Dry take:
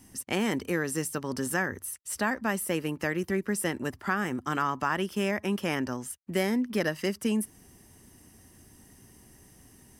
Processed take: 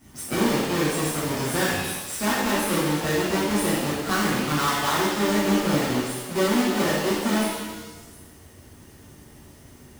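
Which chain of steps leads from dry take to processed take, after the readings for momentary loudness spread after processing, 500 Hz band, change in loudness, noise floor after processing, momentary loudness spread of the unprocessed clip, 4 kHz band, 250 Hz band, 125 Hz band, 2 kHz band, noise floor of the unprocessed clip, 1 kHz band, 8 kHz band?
5 LU, +6.5 dB, +6.5 dB, -49 dBFS, 4 LU, +11.0 dB, +6.5 dB, +7.0 dB, +4.5 dB, -57 dBFS, +7.0 dB, +7.0 dB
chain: half-waves squared off; delay with a stepping band-pass 0.235 s, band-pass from 3500 Hz, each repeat 0.7 oct, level -9 dB; shimmer reverb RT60 1.1 s, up +7 st, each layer -8 dB, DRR -9 dB; gain -7.5 dB

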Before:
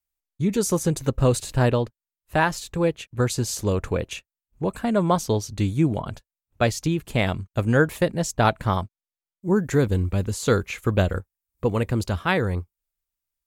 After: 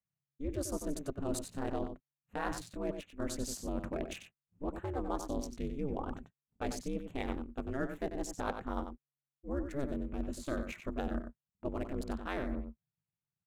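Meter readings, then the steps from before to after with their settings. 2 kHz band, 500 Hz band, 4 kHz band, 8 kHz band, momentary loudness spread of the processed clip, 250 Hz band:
-18.0 dB, -15.5 dB, -16.5 dB, -14.0 dB, 6 LU, -13.0 dB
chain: Wiener smoothing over 9 samples; ring modulator 140 Hz; reverse; compressor 4:1, threshold -31 dBFS, peak gain reduction 13.5 dB; reverse; dynamic EQ 2900 Hz, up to -4 dB, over -49 dBFS, Q 0.84; outdoor echo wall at 16 m, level -8 dB; gain -3 dB

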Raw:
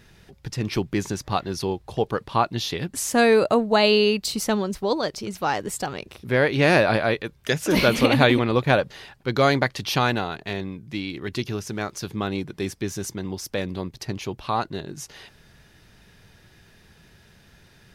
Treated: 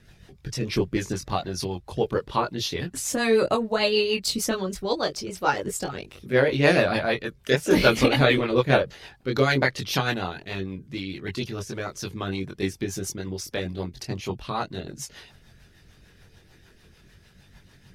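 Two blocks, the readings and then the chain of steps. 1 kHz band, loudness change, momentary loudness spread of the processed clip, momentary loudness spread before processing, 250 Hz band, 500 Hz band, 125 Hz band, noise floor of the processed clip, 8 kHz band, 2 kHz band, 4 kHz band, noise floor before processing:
-3.5 dB, -2.0 dB, 14 LU, 14 LU, -2.5 dB, -1.5 dB, -1.5 dB, -56 dBFS, -0.5 dB, -1.5 dB, -1.5 dB, -55 dBFS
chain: chorus voices 4, 0.16 Hz, delay 22 ms, depth 1.4 ms; harmonic-percussive split percussive +6 dB; rotary speaker horn 6.7 Hz

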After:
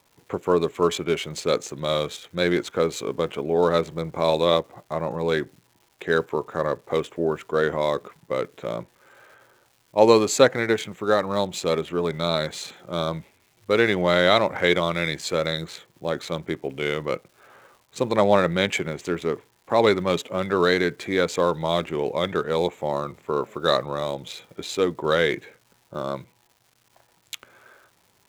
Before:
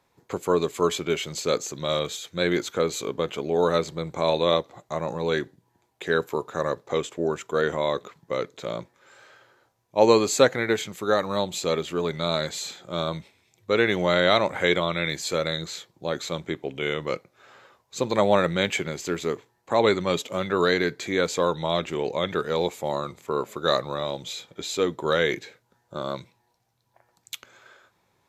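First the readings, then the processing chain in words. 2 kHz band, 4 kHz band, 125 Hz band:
+1.5 dB, +0.5 dB, +2.0 dB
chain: Wiener smoothing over 9 samples; crackle 400/s -49 dBFS; gain +2 dB

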